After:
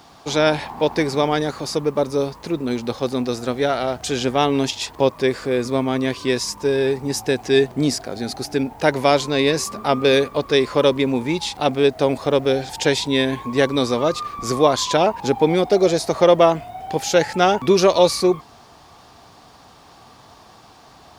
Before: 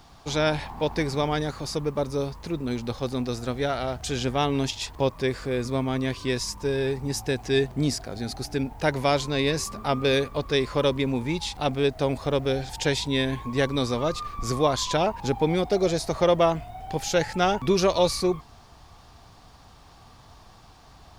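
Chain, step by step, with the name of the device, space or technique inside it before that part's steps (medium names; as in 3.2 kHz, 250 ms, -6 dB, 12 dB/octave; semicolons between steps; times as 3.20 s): filter by subtraction (in parallel: low-pass 340 Hz 12 dB/octave + polarity flip); on the sum: trim +5.5 dB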